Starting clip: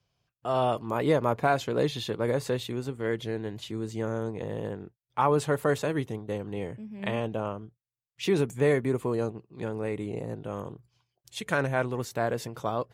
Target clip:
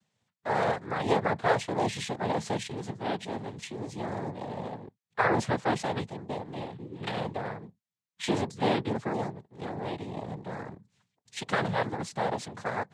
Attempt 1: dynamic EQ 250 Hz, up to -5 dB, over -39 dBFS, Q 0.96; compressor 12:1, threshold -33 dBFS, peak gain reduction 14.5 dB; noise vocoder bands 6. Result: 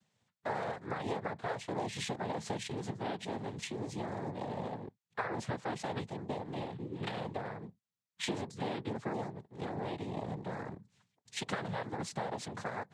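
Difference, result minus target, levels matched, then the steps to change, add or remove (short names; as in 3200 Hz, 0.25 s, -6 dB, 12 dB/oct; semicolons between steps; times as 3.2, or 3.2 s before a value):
compressor: peak gain reduction +14.5 dB
remove: compressor 12:1, threshold -33 dBFS, peak gain reduction 14.5 dB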